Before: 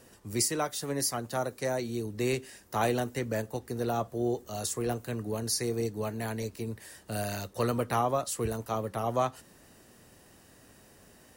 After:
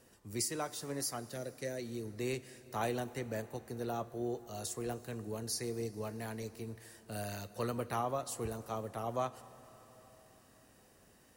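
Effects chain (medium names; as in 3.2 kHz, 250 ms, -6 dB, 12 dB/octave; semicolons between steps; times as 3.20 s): 1.32–1.93 s: high-order bell 980 Hz -16 dB 1.1 oct; plate-style reverb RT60 4.6 s, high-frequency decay 0.8×, DRR 15.5 dB; trim -7.5 dB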